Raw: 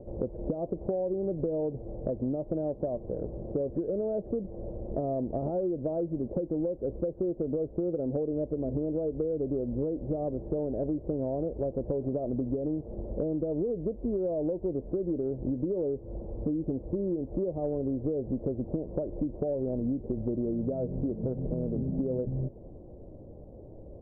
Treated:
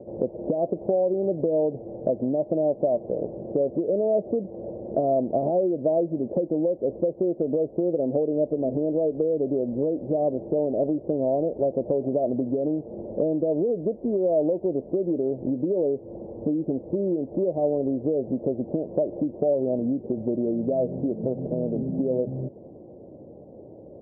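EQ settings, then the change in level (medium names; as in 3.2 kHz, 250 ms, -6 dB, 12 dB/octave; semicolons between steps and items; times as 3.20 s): high-pass 170 Hz 12 dB/octave; low-pass 1 kHz 24 dB/octave; dynamic bell 650 Hz, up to +6 dB, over -45 dBFS, Q 2.9; +5.5 dB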